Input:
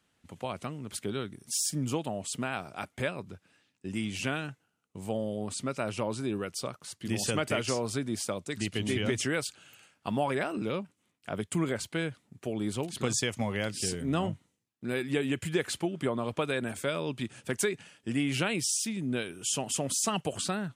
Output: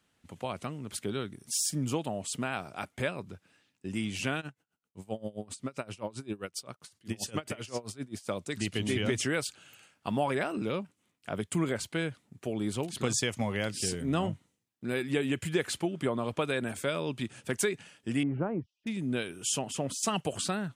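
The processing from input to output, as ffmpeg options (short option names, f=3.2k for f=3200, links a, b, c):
-filter_complex "[0:a]asplit=3[a][b][c];[a]afade=t=out:st=4.4:d=0.02[d];[b]aeval=exprs='val(0)*pow(10,-23*(0.5-0.5*cos(2*PI*7.6*n/s))/20)':c=same,afade=t=in:st=4.4:d=0.02,afade=t=out:st=8.27:d=0.02[e];[c]afade=t=in:st=8.27:d=0.02[f];[d][e][f]amix=inputs=3:normalize=0,asettb=1/sr,asplit=3[g][h][i];[g]atrim=end=18.234[j];[h]atrim=start=18.23:end=18.87,asetpts=PTS-STARTPTS,afade=t=in:d=0.004:c=qsin,afade=t=out:st=0.636:d=0.004:c=qsin,lowpass=f=1.1k:w=0.5412,lowpass=f=1.1k:w=1.3066[k];[i]atrim=start=18.866[l];[j][k]acrossfade=d=0.004:c1=hsin:c2=qsin[m];[m][l]acrossfade=d=0.004:c1=qsin:c2=hsin,asettb=1/sr,asplit=3[n][o][p];[n]atrim=end=19.594[q];[o]atrim=start=19.59:end=20.03,asetpts=PTS-STARTPTS,afade=t=in:d=0.004:c=qsin,afade=t=out:st=0.436:d=0.004:c=qsin,highshelf=f=4.5k:g=-10.5[r];[p]atrim=start=20.026[s];[q][r]acrossfade=d=0.004:c1=hsin:c2=qsin[t];[t][s]acrossfade=d=0.004:c1=qsin:c2=hsin"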